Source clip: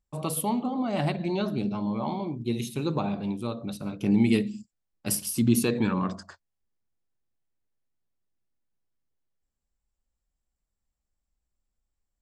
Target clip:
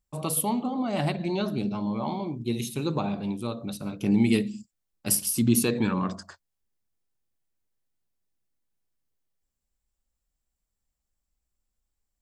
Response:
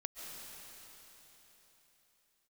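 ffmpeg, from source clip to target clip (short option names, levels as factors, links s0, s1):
-af "highshelf=f=5300:g=5.5"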